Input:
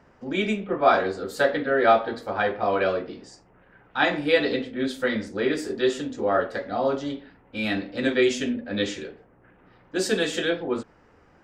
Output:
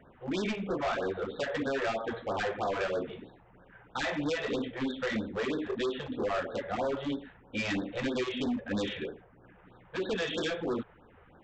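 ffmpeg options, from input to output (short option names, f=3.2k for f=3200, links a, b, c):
-af "aresample=8000,aresample=44100,acompressor=threshold=-23dB:ratio=6,aresample=16000,asoftclip=type=hard:threshold=-27.5dB,aresample=44100,afftfilt=real='re*(1-between(b*sr/1024,230*pow(2500/230,0.5+0.5*sin(2*PI*3.1*pts/sr))/1.41,230*pow(2500/230,0.5+0.5*sin(2*PI*3.1*pts/sr))*1.41))':imag='im*(1-between(b*sr/1024,230*pow(2500/230,0.5+0.5*sin(2*PI*3.1*pts/sr))/1.41,230*pow(2500/230,0.5+0.5*sin(2*PI*3.1*pts/sr))*1.41))':win_size=1024:overlap=0.75"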